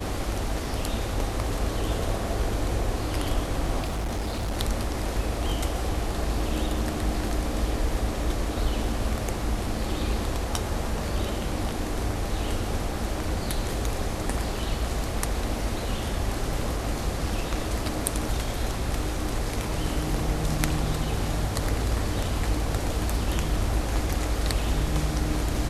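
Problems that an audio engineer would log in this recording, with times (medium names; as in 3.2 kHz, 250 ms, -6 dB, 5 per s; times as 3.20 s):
3.81–4.58 s: clipped -25 dBFS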